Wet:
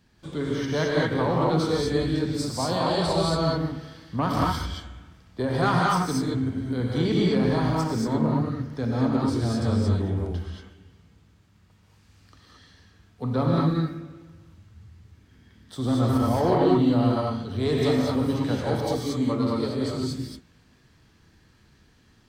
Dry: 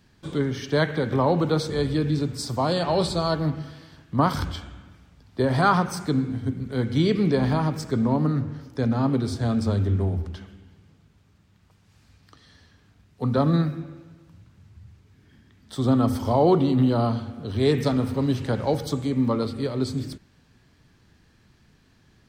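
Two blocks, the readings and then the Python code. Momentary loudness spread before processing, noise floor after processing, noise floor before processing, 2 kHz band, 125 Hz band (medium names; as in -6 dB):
10 LU, -59 dBFS, -60 dBFS, 0.0 dB, -1.5 dB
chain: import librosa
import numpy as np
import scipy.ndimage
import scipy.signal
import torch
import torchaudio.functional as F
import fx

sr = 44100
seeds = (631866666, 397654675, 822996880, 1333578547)

y = 10.0 ** (-12.5 / 20.0) * np.tanh(x / 10.0 ** (-12.5 / 20.0))
y = fx.rev_gated(y, sr, seeds[0], gate_ms=250, shape='rising', drr_db=-3.5)
y = F.gain(torch.from_numpy(y), -4.0).numpy()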